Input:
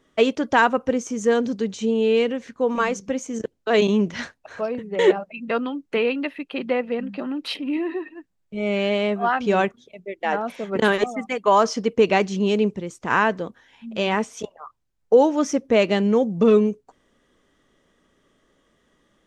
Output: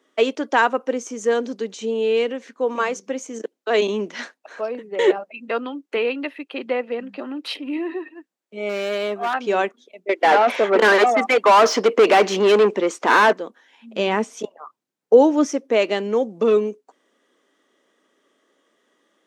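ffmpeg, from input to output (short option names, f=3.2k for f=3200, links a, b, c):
-filter_complex "[0:a]asettb=1/sr,asplit=3[a][b][c];[a]atrim=end=8.694[d];[b]atrim=start=8.69:end=9.34,asetpts=PTS-STARTPTS,afade=t=in:d=0.004:c=qsin,afade=t=out:st=0.646:d=0.004:c=qsin,asoftclip=type=hard:threshold=-18.5dB[e];[c]atrim=start=9.336[f];[d][e]acrossfade=d=0.004:c1=hsin:c2=qsin[g];[g][f]acrossfade=d=0.004:c1=qsin:c2=hsin,asettb=1/sr,asplit=3[h][i][j];[h]atrim=end=10.094[k];[i]atrim=start=10.09:end=13.33,asetpts=PTS-STARTPTS,afade=t=in:d=0.004:c=qsin,afade=t=out:st=3.236:d=0.004:c=qsin,asplit=2[l][m];[m]highpass=f=720:p=1,volume=27dB,asoftclip=type=tanh:threshold=-5dB[n];[l][n]amix=inputs=2:normalize=0,lowpass=f=1.7k:p=1,volume=-6dB[o];[j]atrim=start=13.326[p];[k][o]acrossfade=d=0.004:c1=hsin:c2=qsin[q];[q][p]acrossfade=d=0.004:c1=qsin:c2=hsin,asettb=1/sr,asplit=3[r][s][t];[r]atrim=end=13.964[u];[s]atrim=start=13.96:end=15.46,asetpts=PTS-STARTPTS,afade=t=in:d=0.004:c=qsin,afade=t=out:st=1.496:d=0.004:c=qsin,equalizer=f=130:t=o:w=2:g=14[v];[t]atrim=start=15.456[w];[u][v]acrossfade=d=0.004:c1=hsin:c2=qsin[x];[x][w]acrossfade=d=0.004:c1=qsin:c2=hsin,highpass=f=270:w=0.5412,highpass=f=270:w=1.3066"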